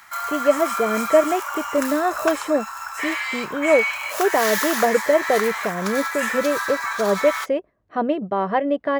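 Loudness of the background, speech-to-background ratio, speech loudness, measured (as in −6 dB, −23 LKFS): −25.5 LKFS, 3.0 dB, −22.5 LKFS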